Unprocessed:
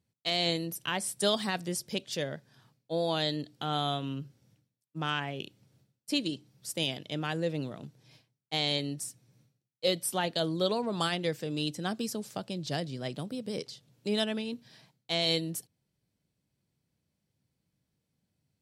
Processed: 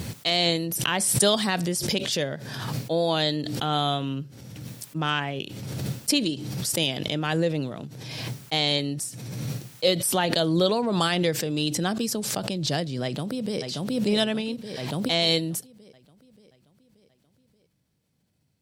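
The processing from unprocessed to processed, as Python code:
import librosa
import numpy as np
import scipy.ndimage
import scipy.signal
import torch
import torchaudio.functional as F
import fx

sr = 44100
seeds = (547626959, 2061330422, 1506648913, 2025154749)

y = fx.echo_throw(x, sr, start_s=13.03, length_s=0.57, ms=580, feedback_pct=55, wet_db=-6.5)
y = fx.pre_swell(y, sr, db_per_s=29.0)
y = y * librosa.db_to_amplitude(6.0)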